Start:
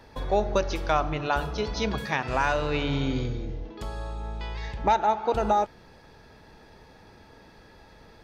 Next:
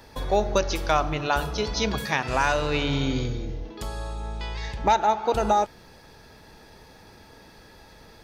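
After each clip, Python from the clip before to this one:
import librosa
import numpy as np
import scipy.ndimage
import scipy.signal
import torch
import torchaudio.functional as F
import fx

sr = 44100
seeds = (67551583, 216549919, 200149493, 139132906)

y = fx.high_shelf(x, sr, hz=5400.0, db=11.5)
y = y * librosa.db_to_amplitude(1.5)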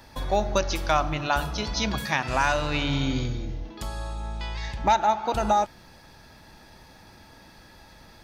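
y = fx.peak_eq(x, sr, hz=440.0, db=-10.0, octaves=0.31)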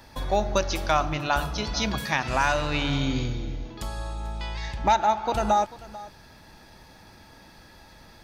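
y = x + 10.0 ** (-18.5 / 20.0) * np.pad(x, (int(442 * sr / 1000.0), 0))[:len(x)]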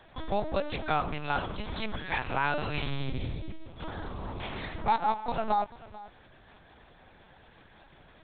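y = fx.lpc_vocoder(x, sr, seeds[0], excitation='pitch_kept', order=8)
y = y * librosa.db_to_amplitude(-5.5)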